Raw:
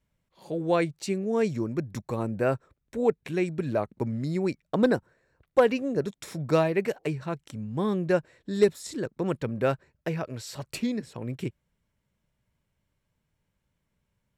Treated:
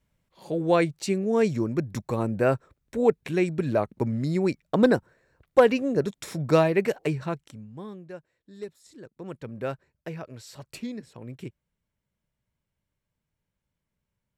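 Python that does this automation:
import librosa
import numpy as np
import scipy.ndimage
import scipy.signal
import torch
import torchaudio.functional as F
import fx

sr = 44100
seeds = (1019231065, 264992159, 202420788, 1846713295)

y = fx.gain(x, sr, db=fx.line((7.27, 3.0), (7.67, -9.0), (8.1, -17.0), (8.78, -17.0), (9.57, -6.0)))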